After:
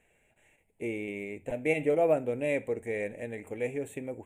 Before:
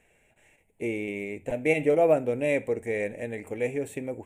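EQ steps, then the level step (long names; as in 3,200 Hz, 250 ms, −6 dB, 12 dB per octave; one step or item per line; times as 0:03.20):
Butterworth band-reject 5,000 Hz, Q 2.5
−4.0 dB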